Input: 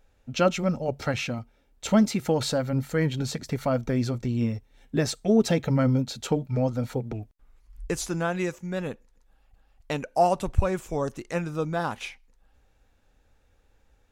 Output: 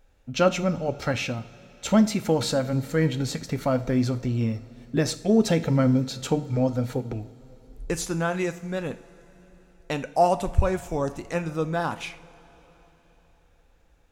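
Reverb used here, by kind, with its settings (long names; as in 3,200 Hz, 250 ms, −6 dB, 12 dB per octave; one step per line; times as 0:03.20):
coupled-rooms reverb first 0.42 s, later 4.2 s, from −18 dB, DRR 10.5 dB
level +1 dB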